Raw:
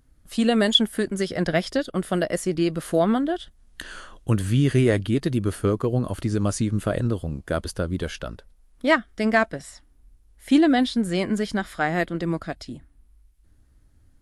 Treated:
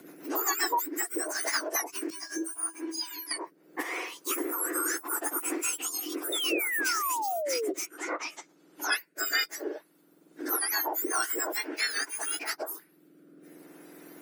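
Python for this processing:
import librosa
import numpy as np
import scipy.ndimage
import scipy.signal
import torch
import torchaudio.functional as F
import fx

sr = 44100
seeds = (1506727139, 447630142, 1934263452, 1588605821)

y = fx.octave_mirror(x, sr, pivot_hz=1800.0)
y = fx.peak_eq(y, sr, hz=1400.0, db=8.5, octaves=0.4)
y = fx.spec_paint(y, sr, seeds[0], shape='fall', start_s=6.32, length_s=1.42, low_hz=370.0, high_hz=3700.0, level_db=-30.0)
y = fx.rotary_switch(y, sr, hz=7.5, then_hz=0.7, switch_at_s=1.1)
y = fx.comb_fb(y, sr, f0_hz=330.0, decay_s=0.16, harmonics='odd', damping=0.0, mix_pct=90, at=(2.1, 3.31))
y = fx.env_lowpass_down(y, sr, base_hz=2400.0, full_db=-32.5, at=(7.85, 8.91), fade=0.02)
y = fx.band_squash(y, sr, depth_pct=70)
y = y * librosa.db_to_amplitude(1.5)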